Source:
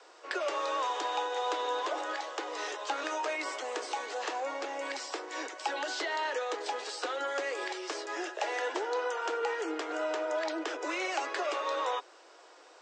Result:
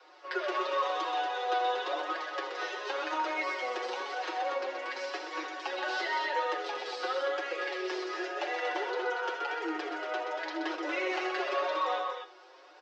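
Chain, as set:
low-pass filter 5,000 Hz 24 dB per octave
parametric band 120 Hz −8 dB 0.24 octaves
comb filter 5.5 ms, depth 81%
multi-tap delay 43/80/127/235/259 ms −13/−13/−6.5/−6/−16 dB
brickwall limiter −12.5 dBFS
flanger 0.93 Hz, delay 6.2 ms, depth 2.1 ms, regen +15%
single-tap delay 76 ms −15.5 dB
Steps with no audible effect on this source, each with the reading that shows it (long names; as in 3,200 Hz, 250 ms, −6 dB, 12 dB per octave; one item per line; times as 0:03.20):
parametric band 120 Hz: nothing at its input below 240 Hz
brickwall limiter −12.5 dBFS: peak of its input −16.0 dBFS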